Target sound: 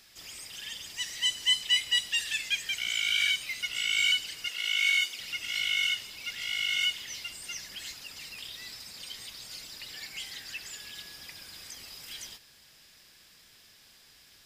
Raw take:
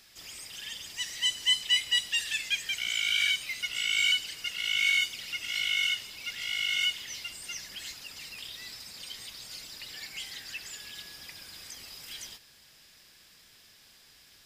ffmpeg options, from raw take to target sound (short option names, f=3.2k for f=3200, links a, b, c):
-filter_complex "[0:a]asettb=1/sr,asplit=3[a][b][c];[a]atrim=end=4.484[d];[b]atrim=start=4.48:end=5.2,asetpts=PTS-STARTPTS,afade=t=in:d=0.004:c=qsin,afade=t=out:st=0.716:d=0.004:c=qsin,highpass=290[e];[c]atrim=start=5.196[f];[d][e]acrossfade=d=0.004:c1=hsin:c2=qsin[g];[g][f]acrossfade=d=0.004:c1=qsin:c2=hsin"